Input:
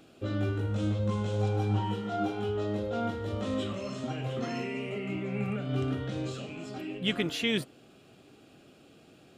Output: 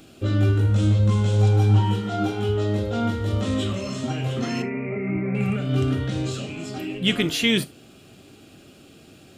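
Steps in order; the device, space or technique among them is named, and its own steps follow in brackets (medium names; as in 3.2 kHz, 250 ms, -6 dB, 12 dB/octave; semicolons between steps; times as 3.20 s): 4.62–5.35 s: steep low-pass 2.4 kHz 96 dB/octave; smiley-face EQ (bass shelf 180 Hz +4.5 dB; peaking EQ 680 Hz -3.5 dB 2.1 oct; treble shelf 5.6 kHz +6.5 dB); gated-style reverb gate 100 ms falling, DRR 11.5 dB; trim +7.5 dB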